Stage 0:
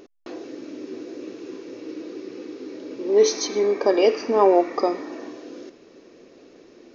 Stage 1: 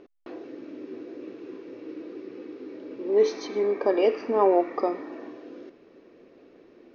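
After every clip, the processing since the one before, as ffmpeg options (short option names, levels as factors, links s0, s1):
-af "lowpass=2800,volume=0.631"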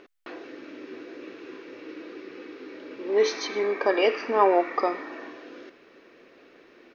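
-af "firequalizer=gain_entry='entry(180,0);entry(1500,14);entry(5200,11)':delay=0.05:min_phase=1,volume=0.631"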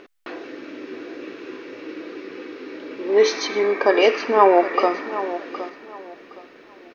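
-af "aecho=1:1:766|1532|2298:0.224|0.0537|0.0129,volume=2"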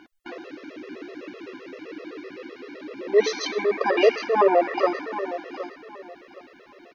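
-af "afftfilt=real='re*gt(sin(2*PI*7.8*pts/sr)*(1-2*mod(floor(b*sr/1024/350),2)),0)':imag='im*gt(sin(2*PI*7.8*pts/sr)*(1-2*mod(floor(b*sr/1024/350),2)),0)':win_size=1024:overlap=0.75"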